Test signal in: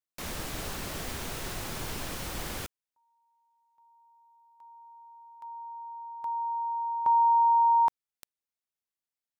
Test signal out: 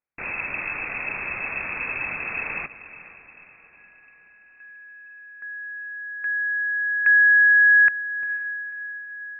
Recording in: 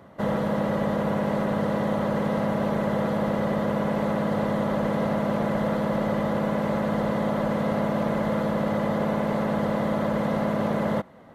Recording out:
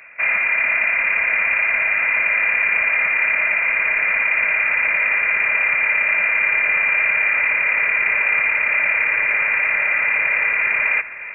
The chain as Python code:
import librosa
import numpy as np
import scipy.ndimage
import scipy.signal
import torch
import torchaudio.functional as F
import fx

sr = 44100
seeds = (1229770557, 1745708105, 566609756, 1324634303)

y = fx.echo_diffused(x, sr, ms=484, feedback_pct=51, wet_db=-14.5)
y = fx.freq_invert(y, sr, carrier_hz=2600)
y = F.gain(torch.from_numpy(y), 6.5).numpy()